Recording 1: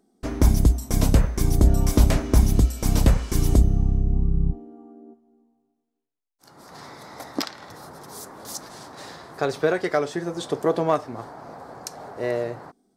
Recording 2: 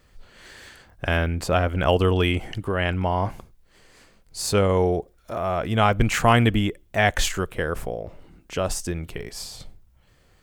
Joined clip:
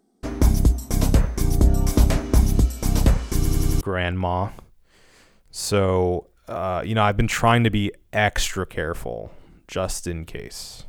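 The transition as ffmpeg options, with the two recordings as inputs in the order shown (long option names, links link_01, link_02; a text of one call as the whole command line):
ffmpeg -i cue0.wav -i cue1.wav -filter_complex "[0:a]apad=whole_dur=10.88,atrim=end=10.88,asplit=5[link_01][link_02][link_03][link_04][link_05];[link_01]atrim=end=3.452[link_06];[link_02]atrim=start=3.358:end=3.452[link_07];[link_03]atrim=start=3.358:end=3.452[link_08];[link_04]atrim=start=3.358:end=3.452[link_09];[link_05]atrim=start=3.358:end=3.452[link_10];[1:a]atrim=start=2.618:end=9.69[link_11];[link_06][link_07]acrossfade=duration=0.004:curve1=hsin:curve2=hsin[link_12];[link_12][link_08]acrossfade=duration=0.004:curve1=hsin:curve2=hsin[link_13];[link_13][link_09]acrossfade=duration=0.004:curve1=hsin:curve2=hsin[link_14];[link_14][link_10]acrossfade=duration=0.004:curve1=hsin:curve2=hsin[link_15];[link_15][link_11]acrossfade=duration=0.004:curve1=hsin:curve2=hsin" out.wav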